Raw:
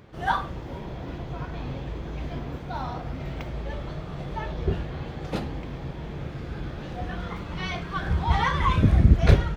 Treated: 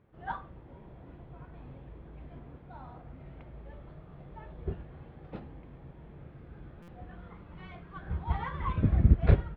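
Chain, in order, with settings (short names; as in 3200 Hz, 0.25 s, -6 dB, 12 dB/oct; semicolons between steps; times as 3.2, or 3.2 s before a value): air absorption 460 m; stuck buffer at 6.82, samples 256, times 9; upward expander 1.5:1, over -31 dBFS; gain -4 dB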